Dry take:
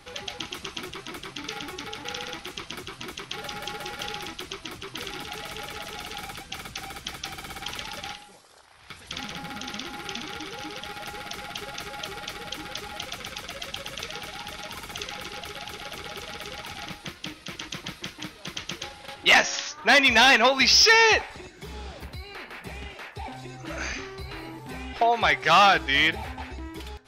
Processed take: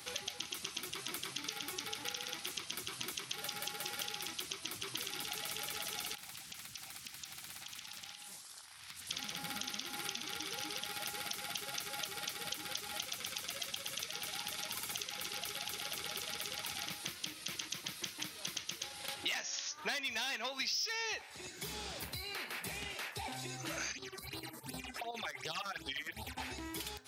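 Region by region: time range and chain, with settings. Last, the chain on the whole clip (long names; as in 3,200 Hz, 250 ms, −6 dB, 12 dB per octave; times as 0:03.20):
0:06.15–0:09.09: parametric band 500 Hz −14 dB 0.87 octaves + downward compressor, threshold −47 dBFS + highs frequency-modulated by the lows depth 0.62 ms
0:23.92–0:26.37: square-wave tremolo 9.8 Hz, depth 65%, duty 65% + downward compressor 2.5 to 1, threshold −33 dBFS + all-pass phaser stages 8, 2.7 Hz, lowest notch 100–2,200 Hz
whole clip: high-pass filter 83 Hz 24 dB per octave; first-order pre-emphasis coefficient 0.8; downward compressor 6 to 1, threshold −46 dBFS; level +8.5 dB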